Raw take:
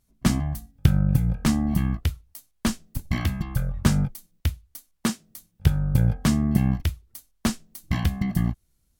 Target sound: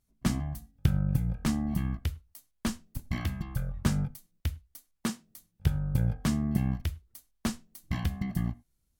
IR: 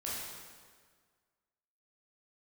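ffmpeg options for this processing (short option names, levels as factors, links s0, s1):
-filter_complex "[0:a]asplit=2[s0][s1];[1:a]atrim=start_sample=2205,afade=t=out:st=0.16:d=0.01,atrim=end_sample=7497,lowpass=3300[s2];[s1][s2]afir=irnorm=-1:irlink=0,volume=0.119[s3];[s0][s3]amix=inputs=2:normalize=0,volume=0.422"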